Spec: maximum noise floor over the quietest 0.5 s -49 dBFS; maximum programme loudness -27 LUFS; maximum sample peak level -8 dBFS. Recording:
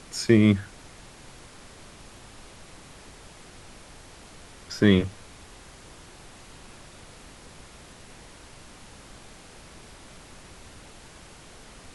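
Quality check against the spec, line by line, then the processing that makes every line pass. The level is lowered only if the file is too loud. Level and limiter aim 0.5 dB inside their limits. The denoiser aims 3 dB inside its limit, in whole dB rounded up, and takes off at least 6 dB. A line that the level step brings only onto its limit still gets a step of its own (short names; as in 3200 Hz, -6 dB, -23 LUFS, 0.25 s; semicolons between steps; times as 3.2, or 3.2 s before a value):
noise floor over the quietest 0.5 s -48 dBFS: fail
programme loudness -22.0 LUFS: fail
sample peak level -6.0 dBFS: fail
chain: gain -5.5 dB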